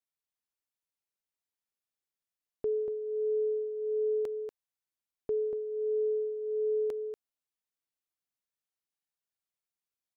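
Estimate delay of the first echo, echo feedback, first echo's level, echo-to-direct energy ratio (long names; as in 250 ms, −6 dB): 238 ms, repeats not evenly spaced, −6.5 dB, −6.5 dB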